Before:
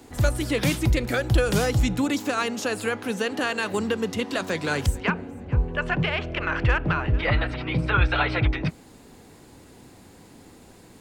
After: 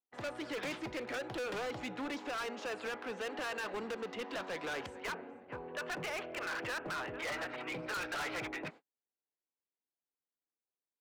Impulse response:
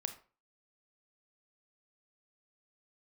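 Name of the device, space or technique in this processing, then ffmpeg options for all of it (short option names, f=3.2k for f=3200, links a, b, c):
walkie-talkie: -af "highpass=450,lowpass=2.5k,asoftclip=type=hard:threshold=-31dB,agate=range=-46dB:threshold=-46dB:ratio=16:detection=peak,volume=-5dB"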